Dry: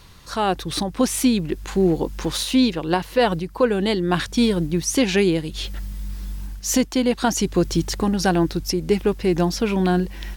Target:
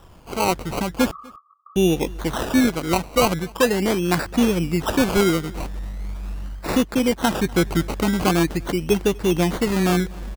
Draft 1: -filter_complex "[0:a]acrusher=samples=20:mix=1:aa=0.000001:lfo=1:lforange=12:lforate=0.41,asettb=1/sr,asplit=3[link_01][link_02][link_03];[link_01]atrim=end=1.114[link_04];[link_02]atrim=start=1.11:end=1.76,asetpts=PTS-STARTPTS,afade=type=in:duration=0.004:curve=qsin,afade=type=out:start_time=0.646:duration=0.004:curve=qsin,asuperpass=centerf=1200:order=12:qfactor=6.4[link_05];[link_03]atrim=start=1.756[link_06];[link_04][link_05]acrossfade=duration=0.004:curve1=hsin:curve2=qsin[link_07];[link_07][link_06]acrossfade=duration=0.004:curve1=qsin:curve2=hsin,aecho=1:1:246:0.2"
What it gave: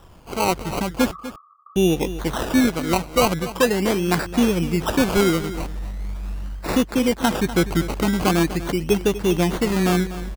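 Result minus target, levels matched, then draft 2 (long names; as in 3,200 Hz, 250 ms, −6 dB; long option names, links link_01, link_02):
echo-to-direct +11.5 dB
-filter_complex "[0:a]acrusher=samples=20:mix=1:aa=0.000001:lfo=1:lforange=12:lforate=0.41,asettb=1/sr,asplit=3[link_01][link_02][link_03];[link_01]atrim=end=1.114[link_04];[link_02]atrim=start=1.11:end=1.76,asetpts=PTS-STARTPTS,afade=type=in:duration=0.004:curve=qsin,afade=type=out:start_time=0.646:duration=0.004:curve=qsin,asuperpass=centerf=1200:order=12:qfactor=6.4[link_05];[link_03]atrim=start=1.756[link_06];[link_04][link_05]acrossfade=duration=0.004:curve1=hsin:curve2=qsin[link_07];[link_07][link_06]acrossfade=duration=0.004:curve1=qsin:curve2=hsin,aecho=1:1:246:0.0531"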